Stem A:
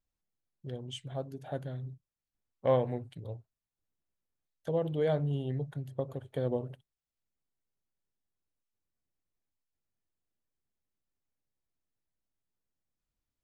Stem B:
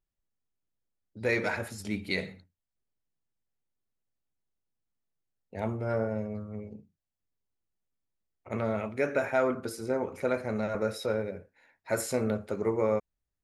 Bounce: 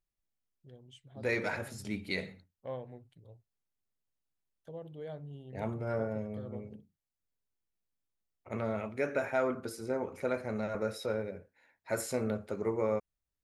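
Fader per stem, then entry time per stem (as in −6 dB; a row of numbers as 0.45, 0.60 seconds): −14.0, −4.0 decibels; 0.00, 0.00 seconds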